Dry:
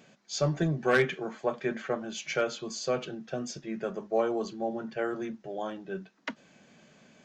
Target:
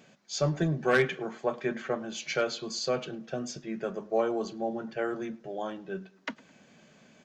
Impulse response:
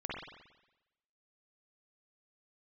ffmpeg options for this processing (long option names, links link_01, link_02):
-filter_complex "[0:a]asettb=1/sr,asplit=3[link_01][link_02][link_03];[link_01]atrim=end=2.204[link_04];[link_02]atrim=start=2.2:end=2.89,asetpts=PTS-STARTPTS,afade=type=in:duration=0.004:curve=qsin,afade=type=out:start_time=0.686:duration=0.004:curve=qsin,equalizer=frequency=4300:width_type=o:width=0.37:gain=7[link_05];[link_03]atrim=start=2.886[link_06];[link_04][link_05]acrossfade=duration=0.004:curve1=hsin:curve2=qsin[link_07];[link_07][link_06]acrossfade=duration=0.004:curve1=qsin:curve2=hsin,asplit=2[link_08][link_09];[link_09]adelay=106,lowpass=frequency=2500:poles=1,volume=-21dB,asplit=2[link_10][link_11];[link_11]adelay=106,lowpass=frequency=2500:poles=1,volume=0.41,asplit=2[link_12][link_13];[link_13]adelay=106,lowpass=frequency=2500:poles=1,volume=0.41[link_14];[link_08][link_10][link_12][link_14]amix=inputs=4:normalize=0"